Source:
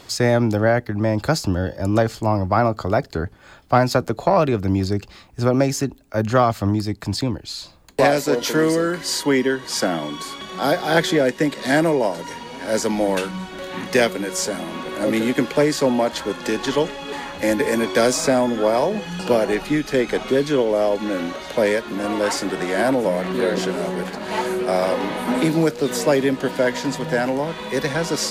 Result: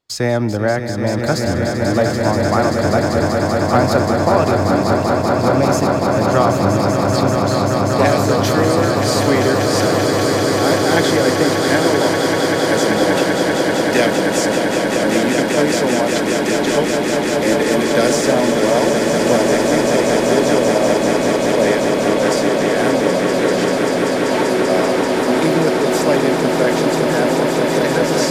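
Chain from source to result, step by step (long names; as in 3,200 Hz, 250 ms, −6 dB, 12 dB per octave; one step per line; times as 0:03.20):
noise gate −38 dBFS, range −34 dB
on a send: echo that builds up and dies away 194 ms, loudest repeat 8, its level −7 dB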